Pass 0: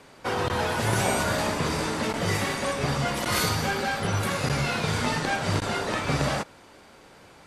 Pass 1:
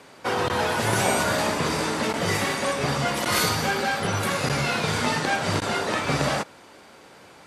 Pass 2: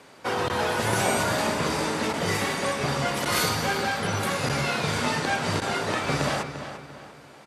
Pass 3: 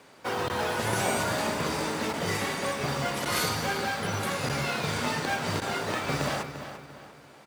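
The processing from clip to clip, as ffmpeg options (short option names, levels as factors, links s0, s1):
-af "highpass=f=150:p=1,volume=1.41"
-filter_complex "[0:a]asplit=2[s0][s1];[s1]adelay=346,lowpass=f=4400:p=1,volume=0.316,asplit=2[s2][s3];[s3]adelay=346,lowpass=f=4400:p=1,volume=0.4,asplit=2[s4][s5];[s5]adelay=346,lowpass=f=4400:p=1,volume=0.4,asplit=2[s6][s7];[s7]adelay=346,lowpass=f=4400:p=1,volume=0.4[s8];[s0][s2][s4][s6][s8]amix=inputs=5:normalize=0,volume=0.794"
-af "acrusher=bits=5:mode=log:mix=0:aa=0.000001,volume=0.668"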